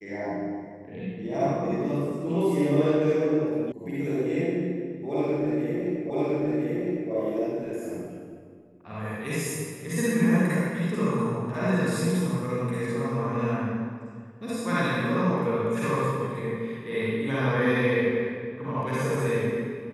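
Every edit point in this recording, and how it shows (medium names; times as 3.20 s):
3.72 s: sound stops dead
6.10 s: repeat of the last 1.01 s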